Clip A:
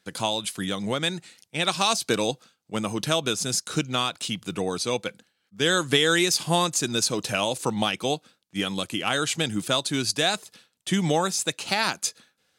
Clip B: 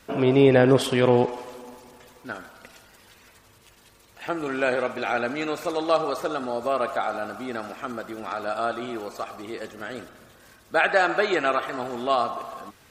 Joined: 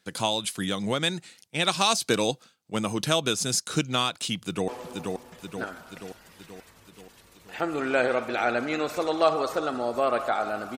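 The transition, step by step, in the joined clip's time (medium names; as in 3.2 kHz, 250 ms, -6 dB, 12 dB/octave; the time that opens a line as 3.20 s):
clip A
4.36–4.68 s: echo throw 480 ms, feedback 60%, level -3.5 dB
4.68 s: go over to clip B from 1.36 s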